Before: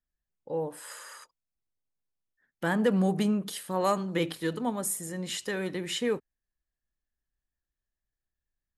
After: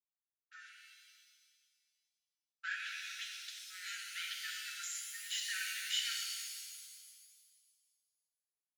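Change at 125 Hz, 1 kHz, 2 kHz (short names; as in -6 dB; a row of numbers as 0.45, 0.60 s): under -40 dB, -20.5 dB, -3.0 dB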